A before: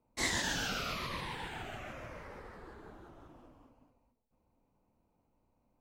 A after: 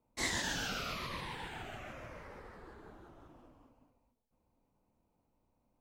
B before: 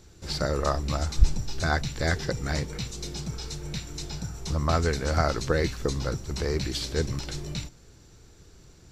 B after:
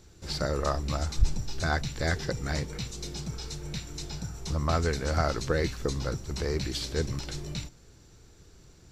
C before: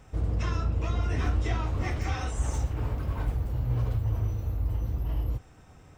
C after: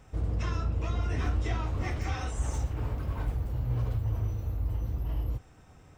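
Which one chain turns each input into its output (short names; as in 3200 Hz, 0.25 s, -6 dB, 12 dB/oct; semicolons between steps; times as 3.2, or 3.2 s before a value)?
soft clip -10 dBFS; gain -2 dB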